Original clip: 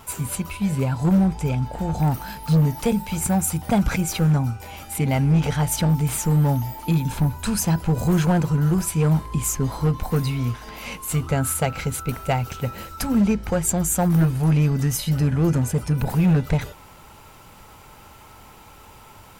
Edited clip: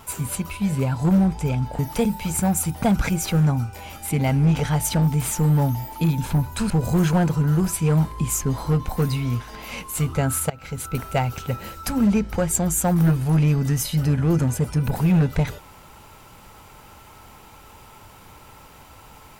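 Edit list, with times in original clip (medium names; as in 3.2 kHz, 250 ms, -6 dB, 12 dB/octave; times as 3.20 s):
1.79–2.66 s: delete
7.57–7.84 s: delete
11.64–12.10 s: fade in, from -23 dB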